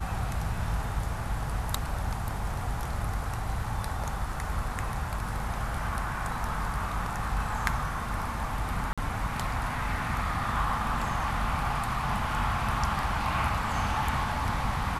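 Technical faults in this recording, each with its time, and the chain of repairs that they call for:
8.93–8.98 gap 46 ms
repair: interpolate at 8.93, 46 ms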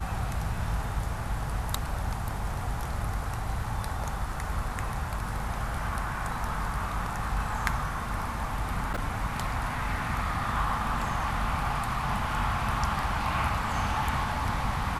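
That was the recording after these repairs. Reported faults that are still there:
none

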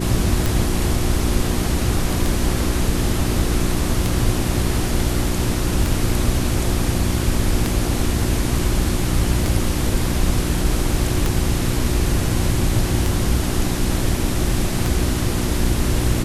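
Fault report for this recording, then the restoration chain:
hum 60 Hz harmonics 6 -24 dBFS
tick 33 1/3 rpm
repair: de-click; de-hum 60 Hz, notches 6

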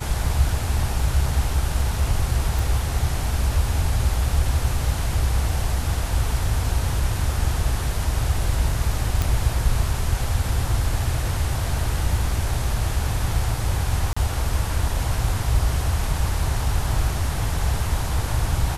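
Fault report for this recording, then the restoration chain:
2.59 pop
9.22 pop
14.13–14.16 gap 35 ms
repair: de-click; interpolate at 14.13, 35 ms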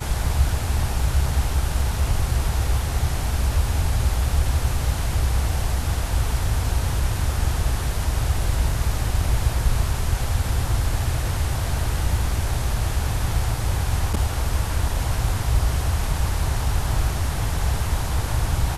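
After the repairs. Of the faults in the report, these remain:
none

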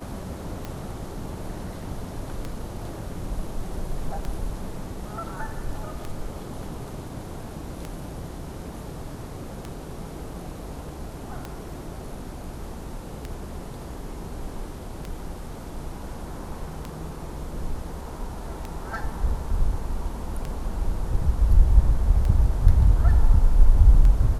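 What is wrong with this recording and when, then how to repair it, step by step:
tick 33 1/3 rpm -18 dBFS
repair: de-click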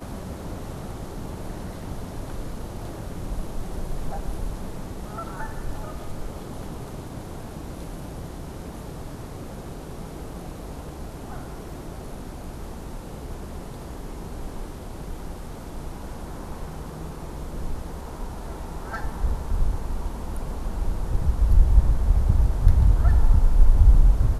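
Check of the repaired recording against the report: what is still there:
none

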